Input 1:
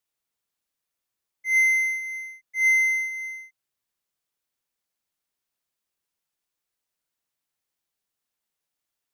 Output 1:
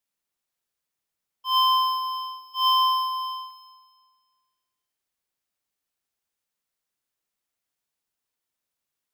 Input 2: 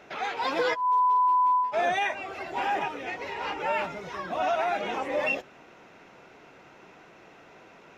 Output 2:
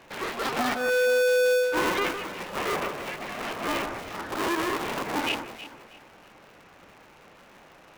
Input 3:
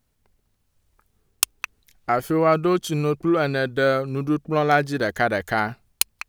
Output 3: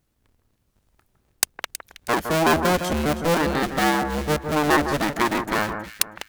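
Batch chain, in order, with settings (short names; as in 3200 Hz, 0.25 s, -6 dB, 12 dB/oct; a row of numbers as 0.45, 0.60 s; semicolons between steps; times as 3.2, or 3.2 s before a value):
cycle switcher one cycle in 2, inverted; on a send: echo with dull and thin repeats by turns 0.16 s, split 1800 Hz, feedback 53%, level -7.5 dB; on the sum: gain -1 dB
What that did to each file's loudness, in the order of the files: -2.0, 0.0, 0.0 LU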